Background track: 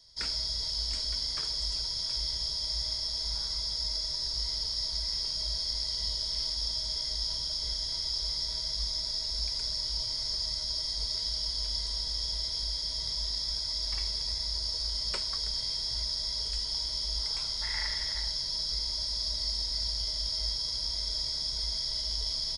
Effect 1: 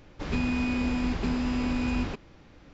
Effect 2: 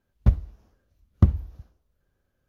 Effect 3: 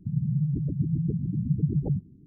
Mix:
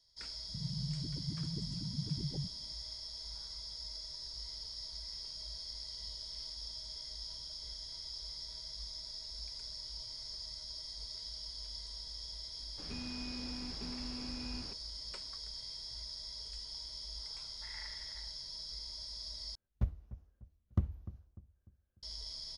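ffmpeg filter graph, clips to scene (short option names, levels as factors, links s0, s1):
-filter_complex "[0:a]volume=0.237[s0];[2:a]asplit=2[s1][s2];[s2]adelay=298,lowpass=f=1100:p=1,volume=0.168,asplit=2[s3][s4];[s4]adelay=298,lowpass=f=1100:p=1,volume=0.41,asplit=2[s5][s6];[s6]adelay=298,lowpass=f=1100:p=1,volume=0.41,asplit=2[s7][s8];[s8]adelay=298,lowpass=f=1100:p=1,volume=0.41[s9];[s1][s3][s5][s7][s9]amix=inputs=5:normalize=0[s10];[s0]asplit=2[s11][s12];[s11]atrim=end=19.554[s13];[s10]atrim=end=2.48,asetpts=PTS-STARTPTS,volume=0.188[s14];[s12]atrim=start=22.026[s15];[3:a]atrim=end=2.26,asetpts=PTS-STARTPTS,volume=0.211,afade=t=in:d=0.004:c=hsin,afade=t=out:st=2.256:d=0.004:c=hsin,adelay=480[s16];[1:a]atrim=end=2.73,asetpts=PTS-STARTPTS,volume=0.141,afade=t=in:d=0.004:c=hsin,afade=t=out:st=2.726:d=0.004:c=hsin,adelay=12580[s17];[s13][s14]acrossfade=d=0.004:c1=hsin:c2=hsin[s18];[s18][s15]acrossfade=d=0.004:c1=hsin:c2=hsin[s19];[s19][s16][s17]amix=inputs=3:normalize=0"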